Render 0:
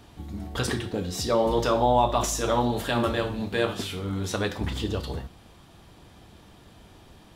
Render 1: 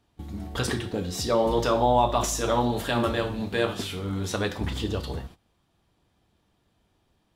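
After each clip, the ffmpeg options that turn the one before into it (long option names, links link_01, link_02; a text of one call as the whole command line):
ffmpeg -i in.wav -af "agate=range=-18dB:threshold=-43dB:ratio=16:detection=peak" out.wav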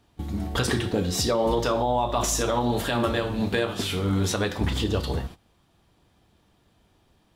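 ffmpeg -i in.wav -af "alimiter=limit=-20dB:level=0:latency=1:release=276,volume=6dB" out.wav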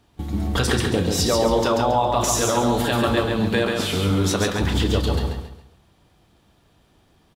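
ffmpeg -i in.wav -af "aecho=1:1:137|274|411|548:0.631|0.208|0.0687|0.0227,volume=3dB" out.wav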